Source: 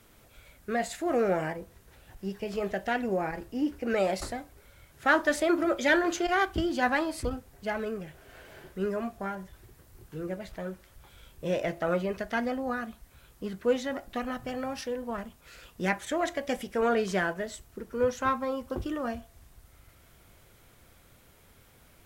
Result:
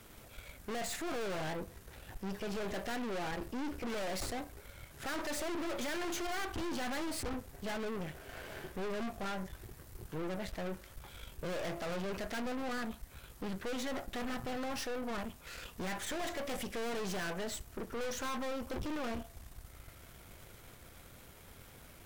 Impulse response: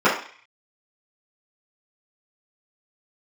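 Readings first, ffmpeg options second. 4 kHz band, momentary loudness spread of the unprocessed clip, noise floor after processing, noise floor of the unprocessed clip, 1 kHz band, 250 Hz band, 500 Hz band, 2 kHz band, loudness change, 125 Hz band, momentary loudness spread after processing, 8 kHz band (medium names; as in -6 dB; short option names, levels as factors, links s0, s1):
-2.5 dB, 14 LU, -56 dBFS, -59 dBFS, -9.5 dB, -8.0 dB, -10.0 dB, -10.0 dB, -9.0 dB, -5.0 dB, 16 LU, -1.0 dB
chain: -af "alimiter=limit=0.112:level=0:latency=1:release=97,aeval=exprs='(tanh(158*val(0)+0.7)-tanh(0.7))/158':c=same,volume=2.24"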